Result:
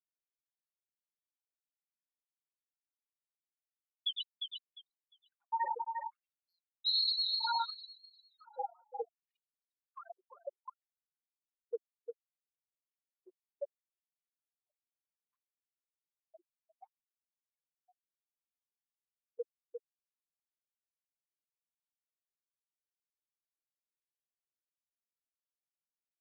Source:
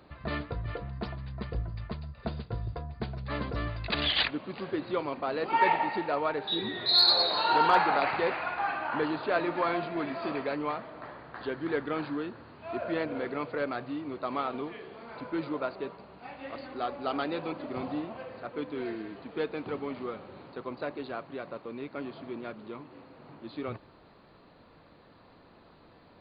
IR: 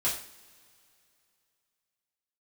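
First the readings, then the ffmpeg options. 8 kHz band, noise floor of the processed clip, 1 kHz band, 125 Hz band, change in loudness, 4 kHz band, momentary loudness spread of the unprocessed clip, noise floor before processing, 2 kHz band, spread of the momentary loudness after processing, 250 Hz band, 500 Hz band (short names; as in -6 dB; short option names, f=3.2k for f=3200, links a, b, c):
n/a, under -85 dBFS, -12.5 dB, under -40 dB, -5.5 dB, -8.0 dB, 16 LU, -57 dBFS, -22.5 dB, 23 LU, under -40 dB, -17.5 dB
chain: -filter_complex "[0:a]aemphasis=mode=production:type=bsi,afftfilt=real='re*gte(hypot(re,im),0.355)':imag='im*gte(hypot(re,im),0.355)':win_size=1024:overlap=0.75,acompressor=threshold=-37dB:ratio=3,asplit=2[a][b];[b]aecho=0:1:352|704|1056:0.531|0.106|0.0212[c];[a][c]amix=inputs=2:normalize=0,afftfilt=real='re*gte(b*sr/1024,280*pow(4200/280,0.5+0.5*sin(2*PI*0.65*pts/sr)))':imag='im*gte(b*sr/1024,280*pow(4200/280,0.5+0.5*sin(2*PI*0.65*pts/sr)))':win_size=1024:overlap=0.75,volume=2dB"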